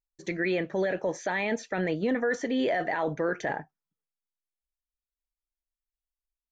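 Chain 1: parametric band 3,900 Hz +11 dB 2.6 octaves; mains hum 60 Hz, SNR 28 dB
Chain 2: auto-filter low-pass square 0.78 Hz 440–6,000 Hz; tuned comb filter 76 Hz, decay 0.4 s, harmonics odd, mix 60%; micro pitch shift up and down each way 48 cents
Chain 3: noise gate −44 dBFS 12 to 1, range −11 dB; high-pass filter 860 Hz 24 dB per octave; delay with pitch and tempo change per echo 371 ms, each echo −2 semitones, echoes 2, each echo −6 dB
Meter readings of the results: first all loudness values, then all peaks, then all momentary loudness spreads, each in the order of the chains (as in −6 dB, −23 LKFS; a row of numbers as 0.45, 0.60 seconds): −26.0, −37.0, −34.5 LKFS; −12.0, −20.0, −19.5 dBFS; 5, 8, 16 LU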